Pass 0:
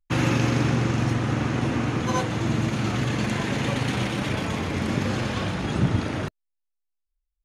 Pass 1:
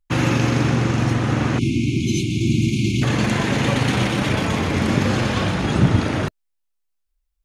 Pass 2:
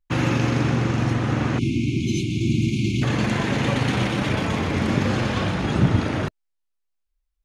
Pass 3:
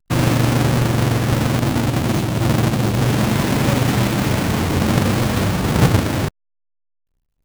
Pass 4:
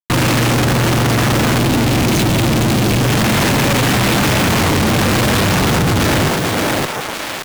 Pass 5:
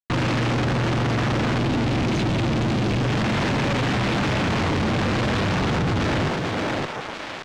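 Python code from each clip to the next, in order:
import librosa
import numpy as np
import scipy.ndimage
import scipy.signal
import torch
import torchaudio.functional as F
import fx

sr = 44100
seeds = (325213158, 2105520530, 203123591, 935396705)

y1 = fx.spec_erase(x, sr, start_s=1.58, length_s=1.45, low_hz=400.0, high_hz=2100.0)
y1 = fx.rider(y1, sr, range_db=10, speed_s=2.0)
y1 = y1 * 10.0 ** (5.5 / 20.0)
y2 = fx.high_shelf(y1, sr, hz=7100.0, db=-7.0)
y2 = y2 * 10.0 ** (-2.5 / 20.0)
y3 = fx.halfwave_hold(y2, sr)
y4 = fx.echo_thinned(y3, sr, ms=570, feedback_pct=28, hz=510.0, wet_db=-12.5)
y4 = fx.fuzz(y4, sr, gain_db=46.0, gate_db=-54.0)
y5 = fx.air_absorb(y4, sr, metres=130.0)
y5 = y5 * 10.0 ** (-7.5 / 20.0)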